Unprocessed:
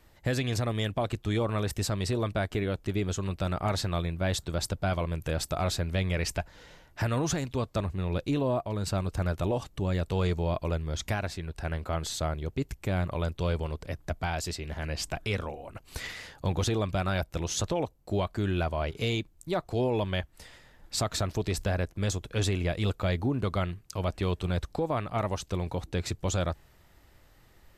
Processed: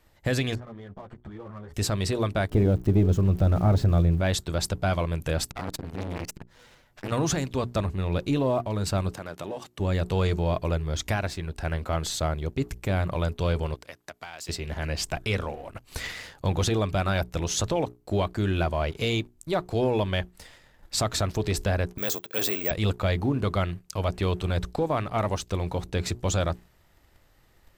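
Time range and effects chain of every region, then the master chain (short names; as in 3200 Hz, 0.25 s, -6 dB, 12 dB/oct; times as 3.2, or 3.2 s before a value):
0.55–1.74 compressor 8:1, threshold -36 dBFS + polynomial smoothing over 41 samples + ensemble effect
2.49–4.21 switching spikes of -29.5 dBFS + LPF 3400 Hz 6 dB/oct + tilt shelf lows +9 dB, about 750 Hz
5.51–7.12 minimum comb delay 8.2 ms + core saturation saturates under 750 Hz
9.13–9.8 HPF 200 Hz + compressor 2:1, threshold -39 dBFS
13.74–14.49 HPF 970 Hz 6 dB/oct + compressor 10:1, threshold -38 dBFS
21.98–22.71 HPF 320 Hz + careless resampling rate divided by 2×, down filtered, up zero stuff
whole clip: notches 60/120/180/240/300/360/420 Hz; sample leveller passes 1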